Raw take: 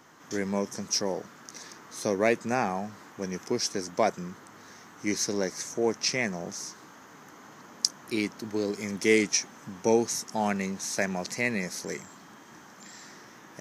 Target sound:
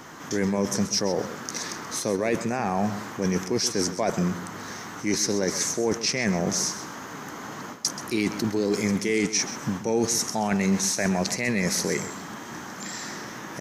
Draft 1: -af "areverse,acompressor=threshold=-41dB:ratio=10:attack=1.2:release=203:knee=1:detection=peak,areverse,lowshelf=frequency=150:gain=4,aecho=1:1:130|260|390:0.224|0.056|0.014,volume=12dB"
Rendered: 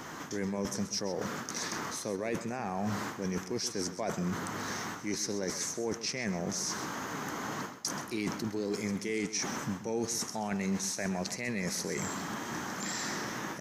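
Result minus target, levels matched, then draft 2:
downward compressor: peak gain reduction +9.5 dB
-af "areverse,acompressor=threshold=-30.5dB:ratio=10:attack=1.2:release=203:knee=1:detection=peak,areverse,lowshelf=frequency=150:gain=4,aecho=1:1:130|260|390:0.224|0.056|0.014,volume=12dB"

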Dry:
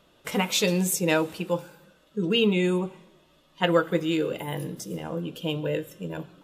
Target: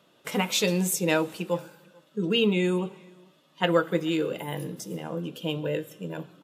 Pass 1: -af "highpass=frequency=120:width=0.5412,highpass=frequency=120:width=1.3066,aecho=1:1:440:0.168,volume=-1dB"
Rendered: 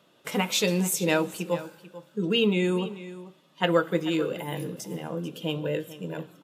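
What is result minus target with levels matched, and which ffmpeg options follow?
echo-to-direct +12 dB
-af "highpass=frequency=120:width=0.5412,highpass=frequency=120:width=1.3066,aecho=1:1:440:0.0422,volume=-1dB"

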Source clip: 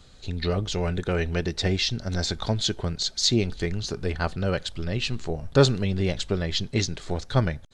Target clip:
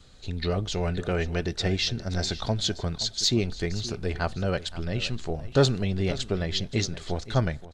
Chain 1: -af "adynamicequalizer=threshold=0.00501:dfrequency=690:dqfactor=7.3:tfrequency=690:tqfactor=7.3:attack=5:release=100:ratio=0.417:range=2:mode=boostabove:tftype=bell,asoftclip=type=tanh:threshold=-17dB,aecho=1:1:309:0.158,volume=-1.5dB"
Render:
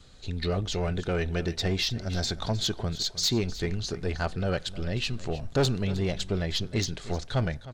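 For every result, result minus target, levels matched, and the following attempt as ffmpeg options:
echo 214 ms early; soft clipping: distortion +11 dB
-af "adynamicequalizer=threshold=0.00501:dfrequency=690:dqfactor=7.3:tfrequency=690:tqfactor=7.3:attack=5:release=100:ratio=0.417:range=2:mode=boostabove:tftype=bell,asoftclip=type=tanh:threshold=-17dB,aecho=1:1:523:0.158,volume=-1.5dB"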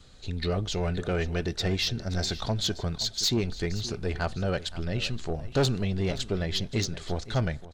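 soft clipping: distortion +11 dB
-af "adynamicequalizer=threshold=0.00501:dfrequency=690:dqfactor=7.3:tfrequency=690:tqfactor=7.3:attack=5:release=100:ratio=0.417:range=2:mode=boostabove:tftype=bell,asoftclip=type=tanh:threshold=-7dB,aecho=1:1:523:0.158,volume=-1.5dB"

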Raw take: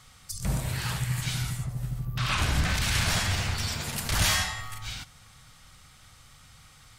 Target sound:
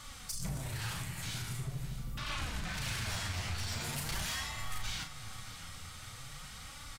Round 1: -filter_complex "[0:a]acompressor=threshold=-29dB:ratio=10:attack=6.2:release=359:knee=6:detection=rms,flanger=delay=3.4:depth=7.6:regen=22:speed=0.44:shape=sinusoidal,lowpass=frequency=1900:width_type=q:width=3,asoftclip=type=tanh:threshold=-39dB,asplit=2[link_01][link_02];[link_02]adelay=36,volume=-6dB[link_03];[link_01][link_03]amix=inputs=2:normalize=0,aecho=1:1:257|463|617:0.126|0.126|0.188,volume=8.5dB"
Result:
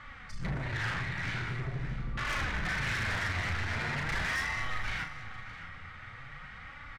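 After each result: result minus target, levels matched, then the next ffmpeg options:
downward compressor: peak gain reduction −7 dB; 2,000 Hz band +4.5 dB
-filter_complex "[0:a]acompressor=threshold=-37dB:ratio=10:attack=6.2:release=359:knee=6:detection=rms,flanger=delay=3.4:depth=7.6:regen=22:speed=0.44:shape=sinusoidal,lowpass=frequency=1900:width_type=q:width=3,asoftclip=type=tanh:threshold=-39dB,asplit=2[link_01][link_02];[link_02]adelay=36,volume=-6dB[link_03];[link_01][link_03]amix=inputs=2:normalize=0,aecho=1:1:257|463|617:0.126|0.126|0.188,volume=8.5dB"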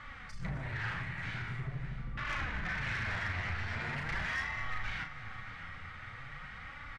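2,000 Hz band +6.0 dB
-filter_complex "[0:a]acompressor=threshold=-37dB:ratio=10:attack=6.2:release=359:knee=6:detection=rms,flanger=delay=3.4:depth=7.6:regen=22:speed=0.44:shape=sinusoidal,asoftclip=type=tanh:threshold=-39dB,asplit=2[link_01][link_02];[link_02]adelay=36,volume=-6dB[link_03];[link_01][link_03]amix=inputs=2:normalize=0,aecho=1:1:257|463|617:0.126|0.126|0.188,volume=8.5dB"

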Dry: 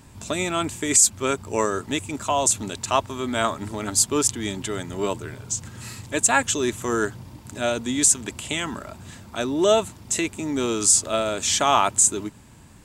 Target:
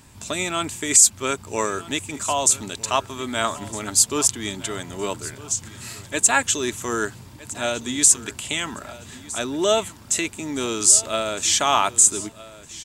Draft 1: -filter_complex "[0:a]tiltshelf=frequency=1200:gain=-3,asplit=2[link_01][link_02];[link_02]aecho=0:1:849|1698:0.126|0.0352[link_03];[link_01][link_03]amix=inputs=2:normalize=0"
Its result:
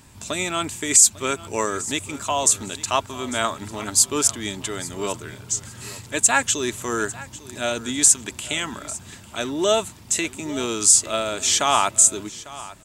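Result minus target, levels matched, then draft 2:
echo 412 ms early
-filter_complex "[0:a]tiltshelf=frequency=1200:gain=-3,asplit=2[link_01][link_02];[link_02]aecho=0:1:1261|2522:0.126|0.0352[link_03];[link_01][link_03]amix=inputs=2:normalize=0"

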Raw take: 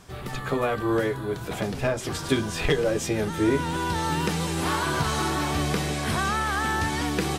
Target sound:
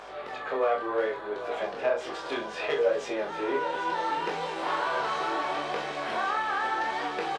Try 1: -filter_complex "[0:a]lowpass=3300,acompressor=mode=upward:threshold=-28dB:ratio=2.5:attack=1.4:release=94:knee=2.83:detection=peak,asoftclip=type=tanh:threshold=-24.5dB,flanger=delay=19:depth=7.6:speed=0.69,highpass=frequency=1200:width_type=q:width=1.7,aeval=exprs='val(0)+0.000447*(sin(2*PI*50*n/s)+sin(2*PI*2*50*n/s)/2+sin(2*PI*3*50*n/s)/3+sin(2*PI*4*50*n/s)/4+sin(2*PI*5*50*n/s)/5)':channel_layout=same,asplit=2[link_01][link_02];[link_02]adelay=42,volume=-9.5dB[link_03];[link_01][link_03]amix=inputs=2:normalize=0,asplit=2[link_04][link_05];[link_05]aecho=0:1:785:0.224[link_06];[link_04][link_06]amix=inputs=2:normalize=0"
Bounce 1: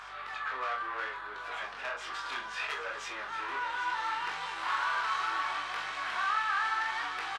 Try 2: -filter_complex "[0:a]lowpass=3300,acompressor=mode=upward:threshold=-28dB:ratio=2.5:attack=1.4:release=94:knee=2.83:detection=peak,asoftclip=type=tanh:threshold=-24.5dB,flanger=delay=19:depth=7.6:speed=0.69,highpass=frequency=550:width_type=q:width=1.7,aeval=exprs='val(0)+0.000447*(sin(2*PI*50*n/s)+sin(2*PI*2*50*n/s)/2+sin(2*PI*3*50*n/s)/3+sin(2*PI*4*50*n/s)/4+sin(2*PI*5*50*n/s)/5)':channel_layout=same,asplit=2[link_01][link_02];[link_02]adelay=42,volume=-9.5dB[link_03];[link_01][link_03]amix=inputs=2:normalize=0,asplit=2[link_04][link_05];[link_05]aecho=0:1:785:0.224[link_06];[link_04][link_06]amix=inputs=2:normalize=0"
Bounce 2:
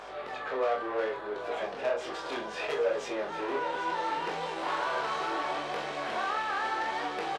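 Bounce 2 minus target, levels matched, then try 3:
soft clipping: distortion +9 dB
-filter_complex "[0:a]lowpass=3300,acompressor=mode=upward:threshold=-28dB:ratio=2.5:attack=1.4:release=94:knee=2.83:detection=peak,asoftclip=type=tanh:threshold=-16dB,flanger=delay=19:depth=7.6:speed=0.69,highpass=frequency=550:width_type=q:width=1.7,aeval=exprs='val(0)+0.000447*(sin(2*PI*50*n/s)+sin(2*PI*2*50*n/s)/2+sin(2*PI*3*50*n/s)/3+sin(2*PI*4*50*n/s)/4+sin(2*PI*5*50*n/s)/5)':channel_layout=same,asplit=2[link_01][link_02];[link_02]adelay=42,volume=-9.5dB[link_03];[link_01][link_03]amix=inputs=2:normalize=0,asplit=2[link_04][link_05];[link_05]aecho=0:1:785:0.224[link_06];[link_04][link_06]amix=inputs=2:normalize=0"

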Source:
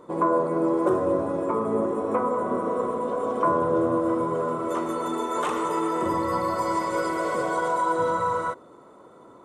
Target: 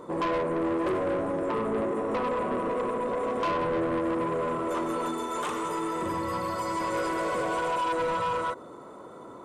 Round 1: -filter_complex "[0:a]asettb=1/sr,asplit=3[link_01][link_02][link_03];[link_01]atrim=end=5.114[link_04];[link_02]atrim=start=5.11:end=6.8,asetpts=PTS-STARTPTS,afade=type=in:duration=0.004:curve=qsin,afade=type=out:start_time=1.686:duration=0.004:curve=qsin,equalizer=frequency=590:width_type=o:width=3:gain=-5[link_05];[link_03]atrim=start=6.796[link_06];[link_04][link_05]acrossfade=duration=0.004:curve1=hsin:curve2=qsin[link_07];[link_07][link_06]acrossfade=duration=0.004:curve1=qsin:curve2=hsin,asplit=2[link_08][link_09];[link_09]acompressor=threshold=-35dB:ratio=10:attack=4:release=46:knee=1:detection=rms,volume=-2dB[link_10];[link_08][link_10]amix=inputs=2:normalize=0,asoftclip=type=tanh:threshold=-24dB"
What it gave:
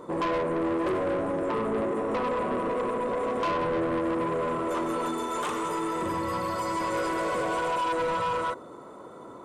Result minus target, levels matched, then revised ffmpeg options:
downward compressor: peak gain reduction −9.5 dB
-filter_complex "[0:a]asettb=1/sr,asplit=3[link_01][link_02][link_03];[link_01]atrim=end=5.114[link_04];[link_02]atrim=start=5.11:end=6.8,asetpts=PTS-STARTPTS,afade=type=in:duration=0.004:curve=qsin,afade=type=out:start_time=1.686:duration=0.004:curve=qsin,equalizer=frequency=590:width_type=o:width=3:gain=-5[link_05];[link_03]atrim=start=6.796[link_06];[link_04][link_05]acrossfade=duration=0.004:curve1=hsin:curve2=qsin[link_07];[link_07][link_06]acrossfade=duration=0.004:curve1=qsin:curve2=hsin,asplit=2[link_08][link_09];[link_09]acompressor=threshold=-45.5dB:ratio=10:attack=4:release=46:knee=1:detection=rms,volume=-2dB[link_10];[link_08][link_10]amix=inputs=2:normalize=0,asoftclip=type=tanh:threshold=-24dB"

